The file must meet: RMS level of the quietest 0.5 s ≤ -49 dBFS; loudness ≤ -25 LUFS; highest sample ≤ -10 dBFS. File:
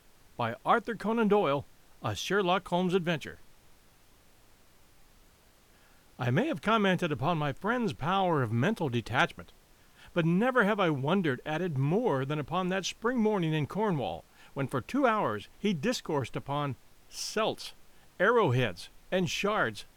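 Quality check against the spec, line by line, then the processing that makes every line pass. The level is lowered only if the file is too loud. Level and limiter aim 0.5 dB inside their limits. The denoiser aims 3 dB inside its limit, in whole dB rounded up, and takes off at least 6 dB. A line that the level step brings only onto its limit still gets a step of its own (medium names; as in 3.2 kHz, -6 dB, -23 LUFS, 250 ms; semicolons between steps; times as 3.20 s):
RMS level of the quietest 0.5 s -61 dBFS: pass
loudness -29.5 LUFS: pass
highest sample -11.5 dBFS: pass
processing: none needed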